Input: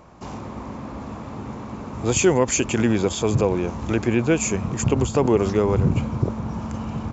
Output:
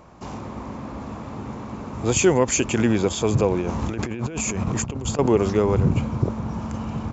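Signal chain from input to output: 3.61–5.19 negative-ratio compressor -27 dBFS, ratio -1

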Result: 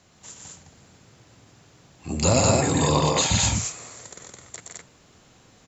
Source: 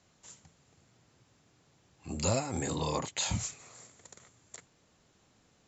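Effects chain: loudspeakers at several distances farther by 41 m -4 dB, 57 m -6 dB, 73 m -2 dB; gain +9 dB

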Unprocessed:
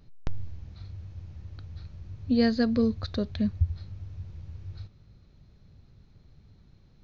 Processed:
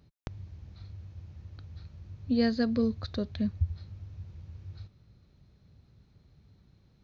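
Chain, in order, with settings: HPF 48 Hz; gain -3 dB

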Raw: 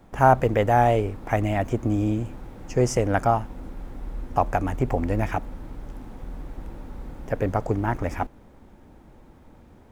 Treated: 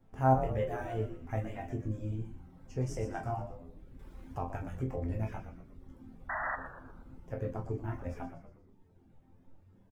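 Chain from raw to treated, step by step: low shelf 320 Hz +9 dB; resonator bank F2 major, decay 0.63 s; reverb removal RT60 1 s; 6.29–6.56 painted sound noise 600–2000 Hz -35 dBFS; on a send: frequency-shifting echo 0.119 s, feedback 48%, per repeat -96 Hz, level -10 dB; 3.99–5.04 on the sum: mismatched tape noise reduction encoder only

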